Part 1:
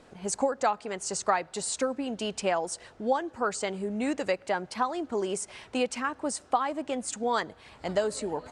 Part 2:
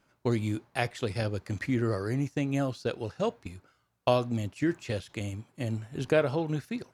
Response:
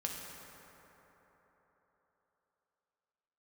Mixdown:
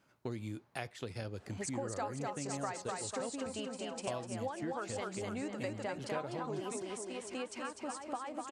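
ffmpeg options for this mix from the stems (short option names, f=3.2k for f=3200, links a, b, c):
-filter_complex "[0:a]adelay=1350,volume=-0.5dB,asplit=2[a][b];[b]volume=-3.5dB[c];[1:a]volume=-2dB,asplit=2[d][e];[e]apad=whole_len=434859[f];[a][f]sidechaingate=range=-11dB:threshold=-56dB:ratio=16:detection=peak[g];[c]aecho=0:1:249|498|747|996|1245|1494|1743:1|0.48|0.23|0.111|0.0531|0.0255|0.0122[h];[g][d][h]amix=inputs=3:normalize=0,highpass=70,acompressor=threshold=-42dB:ratio=2.5"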